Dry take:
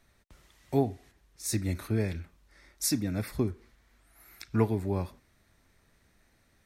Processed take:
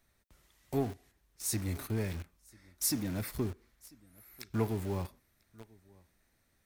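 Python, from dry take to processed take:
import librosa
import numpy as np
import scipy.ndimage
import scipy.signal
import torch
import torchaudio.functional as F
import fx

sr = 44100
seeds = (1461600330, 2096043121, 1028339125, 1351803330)

p1 = fx.high_shelf(x, sr, hz=11000.0, db=12.0)
p2 = p1 + 10.0 ** (-23.5 / 20.0) * np.pad(p1, (int(994 * sr / 1000.0), 0))[:len(p1)]
p3 = fx.quant_companded(p2, sr, bits=2)
p4 = p2 + (p3 * 10.0 ** (-10.0 / 20.0))
y = p4 * 10.0 ** (-7.5 / 20.0)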